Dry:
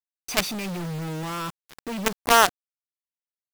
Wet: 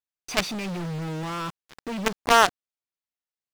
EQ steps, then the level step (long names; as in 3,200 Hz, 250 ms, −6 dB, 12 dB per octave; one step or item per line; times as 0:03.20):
high-shelf EQ 10,000 Hz −11.5 dB
parametric band 13,000 Hz −3 dB 0.64 octaves
0.0 dB